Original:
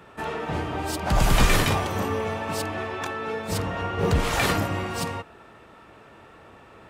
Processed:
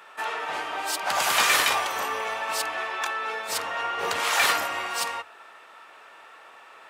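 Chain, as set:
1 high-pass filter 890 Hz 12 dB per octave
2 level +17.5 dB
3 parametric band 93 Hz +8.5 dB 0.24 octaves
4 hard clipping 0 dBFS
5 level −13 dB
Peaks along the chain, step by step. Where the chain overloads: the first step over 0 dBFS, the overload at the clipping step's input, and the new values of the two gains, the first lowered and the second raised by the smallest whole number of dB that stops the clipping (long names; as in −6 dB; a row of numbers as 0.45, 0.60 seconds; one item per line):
−10.5, +7.0, +7.0, 0.0, −13.0 dBFS
step 2, 7.0 dB
step 2 +10.5 dB, step 5 −6 dB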